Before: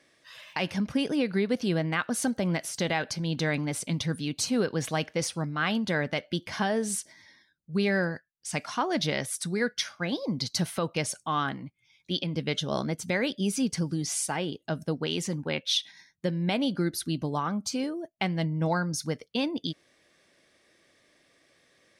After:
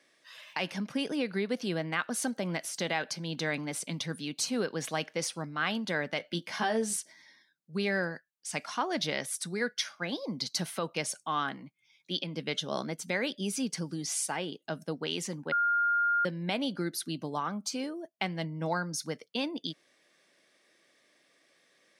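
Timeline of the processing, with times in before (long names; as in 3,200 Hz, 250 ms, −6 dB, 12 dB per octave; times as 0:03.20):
0:06.18–0:06.96: double-tracking delay 18 ms −5 dB
0:15.52–0:16.25: beep over 1,410 Hz −21.5 dBFS
whole clip: high-pass filter 150 Hz 24 dB per octave; low-shelf EQ 410 Hz −5 dB; level −2 dB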